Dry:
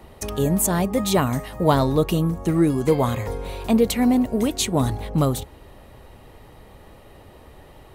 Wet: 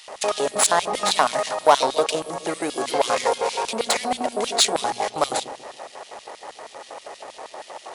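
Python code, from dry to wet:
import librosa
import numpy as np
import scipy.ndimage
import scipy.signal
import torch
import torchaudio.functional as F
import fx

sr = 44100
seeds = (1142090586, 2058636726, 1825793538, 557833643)

p1 = scipy.signal.medfilt(x, 15)
p2 = fx.brickwall_lowpass(p1, sr, high_hz=11000.0)
p3 = fx.high_shelf(p2, sr, hz=3300.0, db=10.5)
p4 = fx.over_compress(p3, sr, threshold_db=-26.0, ratio=-1.0)
p5 = p3 + F.gain(torch.from_numpy(p4), 2.5).numpy()
p6 = 10.0 ** (-8.0 / 20.0) * np.tanh(p5 / 10.0 ** (-8.0 / 20.0))
p7 = fx.filter_lfo_highpass(p6, sr, shape='square', hz=6.3, low_hz=680.0, high_hz=3200.0, q=1.7)
p8 = fx.hum_notches(p7, sr, base_hz=60, count=4)
p9 = p8 + fx.echo_wet_lowpass(p8, sr, ms=139, feedback_pct=42, hz=560.0, wet_db=-8.5, dry=0)
y = F.gain(torch.from_numpy(p9), 2.0).numpy()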